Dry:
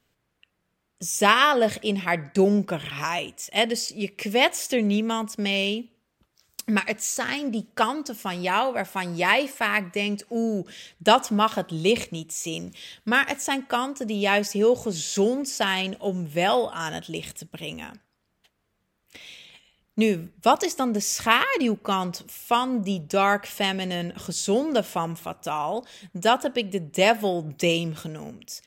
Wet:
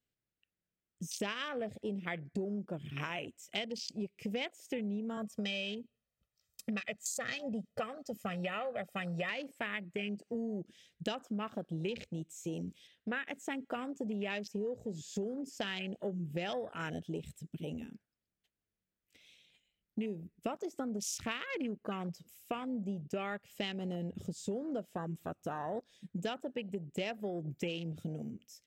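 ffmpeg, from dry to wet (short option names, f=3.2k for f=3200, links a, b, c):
-filter_complex "[0:a]asettb=1/sr,asplit=3[a][b][c];[a]atrim=end=5.174[d];[b]atrim=start=5.17:end=9.3,asetpts=PTS-STARTPTS,afade=t=in:d=0.004:c=qsin,afade=t=out:st=4.126:d=0.004:c=qsin,aecho=1:1:1.6:0.82,atrim=end_sample=182133[e];[c]atrim=start=9.296[f];[d][e]acrossfade=d=0.004:c1=hsin:c2=qsin[g];[g][f]acrossfade=d=0.004:c1=qsin:c2=hsin,asettb=1/sr,asplit=3[h][i][j];[h]atrim=end=12.874[k];[i]atrim=start=12.87:end=13.28,asetpts=PTS-STARTPTS,afade=t=in:d=0.004:c=qsin,afade=t=out:st=0.406:d=0.004:c=qsin,bass=f=250:g=-9,treble=f=4k:g=-11[l];[j]atrim=start=13.276[m];[k][l]acrossfade=d=0.004:c1=hsin:c2=qsin[n];[n][m]acrossfade=d=0.004:c1=qsin:c2=hsin,afwtdn=0.0282,equalizer=f=980:w=1.5:g=-9.5,acompressor=threshold=-33dB:ratio=10,volume=-1.5dB"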